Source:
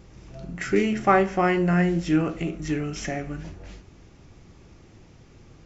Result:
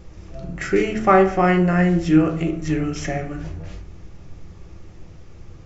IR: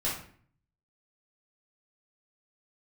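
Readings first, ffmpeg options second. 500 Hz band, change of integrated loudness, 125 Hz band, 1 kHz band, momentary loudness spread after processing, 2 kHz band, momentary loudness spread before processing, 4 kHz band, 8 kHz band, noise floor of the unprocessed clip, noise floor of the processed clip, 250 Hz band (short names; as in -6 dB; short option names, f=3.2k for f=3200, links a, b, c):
+5.0 dB, +5.0 dB, +5.0 dB, +4.0 dB, 19 LU, +3.0 dB, 17 LU, +2.0 dB, n/a, -52 dBFS, -42 dBFS, +5.0 dB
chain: -filter_complex "[0:a]asplit=2[a][b];[1:a]atrim=start_sample=2205,lowpass=2.2k,lowshelf=f=82:g=11[c];[b][c]afir=irnorm=-1:irlink=0,volume=-11dB[d];[a][d]amix=inputs=2:normalize=0,volume=2dB"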